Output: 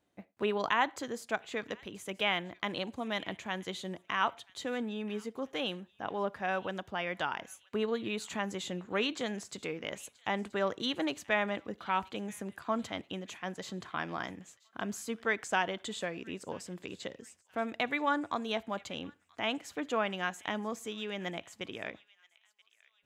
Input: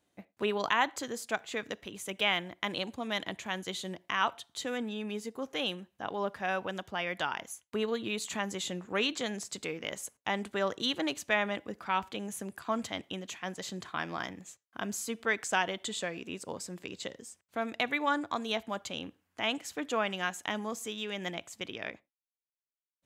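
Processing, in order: high shelf 3600 Hz -7.5 dB; on a send: thin delay 0.979 s, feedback 37%, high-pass 1900 Hz, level -21 dB

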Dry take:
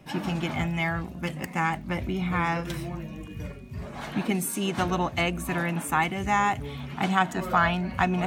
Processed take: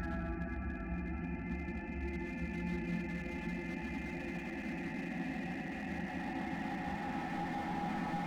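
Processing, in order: rattling part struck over -33 dBFS, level -24 dBFS; spectral gate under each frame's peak -15 dB strong; fifteen-band EQ 400 Hz -10 dB, 1600 Hz -4 dB, 4000 Hz -6 dB; in parallel at +1 dB: compressor, threshold -33 dBFS, peak gain reduction 13 dB; on the sum: soft clip -20 dBFS, distortion -14 dB; Paulstretch 17×, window 0.50 s, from 1.06; fixed phaser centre 720 Hz, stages 8; resonator 54 Hz, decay 1.9 s, harmonics all, mix 40%; pre-echo 0.166 s -13 dB; slew limiter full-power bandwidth 9.3 Hz; gain +2 dB

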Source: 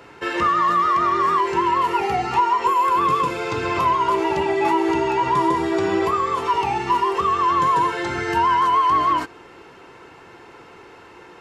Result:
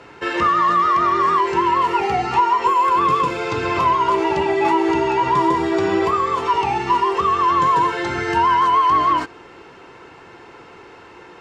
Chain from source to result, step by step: LPF 7800 Hz 12 dB/oct; gain +2 dB

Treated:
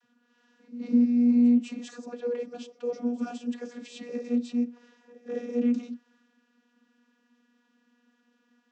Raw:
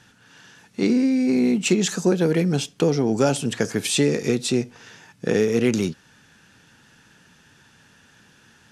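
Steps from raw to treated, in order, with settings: transient shaper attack -5 dB, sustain +3 dB; pre-echo 0.206 s -19 dB; vocoder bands 32, saw 241 Hz; gain -4.5 dB

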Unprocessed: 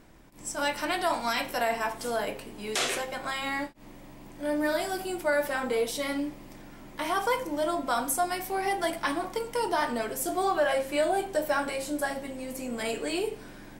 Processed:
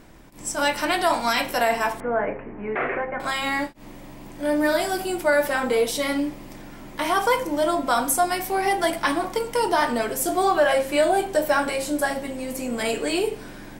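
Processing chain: 2–3.2 steep low-pass 2200 Hz 48 dB/oct; gain +6.5 dB

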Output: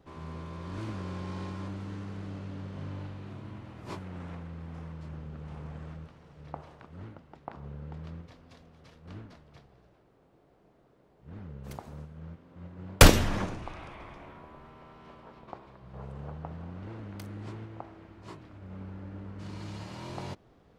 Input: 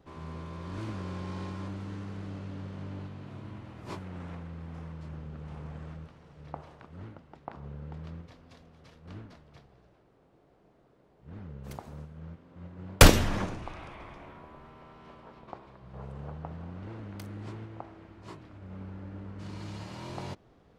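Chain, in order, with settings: 2.72–3.33 flutter echo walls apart 6.8 m, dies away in 0.41 s

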